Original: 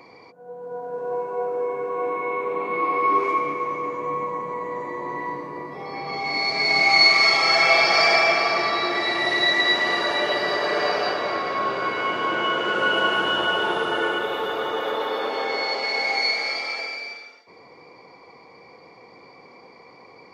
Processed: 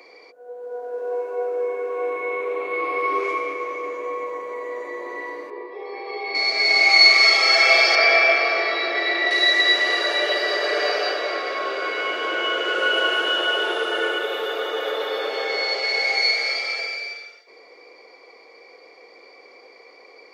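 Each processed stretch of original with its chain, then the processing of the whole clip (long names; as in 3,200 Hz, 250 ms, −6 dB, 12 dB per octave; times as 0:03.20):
0:05.50–0:06.35: loudspeaker in its box 390–3,600 Hz, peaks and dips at 400 Hz +10 dB, 630 Hz −7 dB, 920 Hz +4 dB, 1,400 Hz −5 dB, 2,100 Hz −4 dB, 3,000 Hz −5 dB + notch filter 1,400 Hz, Q 6.5
0:07.95–0:09.31: high-frequency loss of the air 170 metres + double-tracking delay 21 ms −5 dB
whole clip: high-pass filter 390 Hz 24 dB per octave; parametric band 950 Hz −11.5 dB 0.66 octaves; level +3.5 dB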